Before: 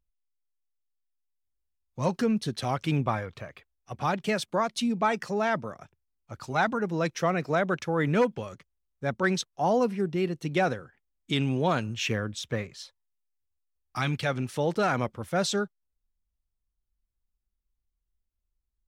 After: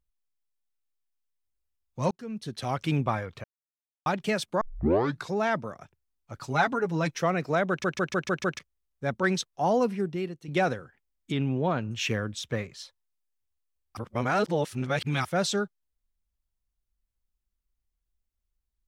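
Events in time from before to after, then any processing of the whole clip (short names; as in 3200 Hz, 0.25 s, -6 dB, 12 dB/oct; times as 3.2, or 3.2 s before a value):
2.11–2.8 fade in
3.44–4.06 mute
4.61 tape start 0.75 s
6.36–7.18 comb 7.1 ms, depth 57%
7.69 stutter in place 0.15 s, 6 plays
9.95–10.48 fade out, to -13 dB
11.32–11.91 tape spacing loss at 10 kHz 26 dB
13.97–15.25 reverse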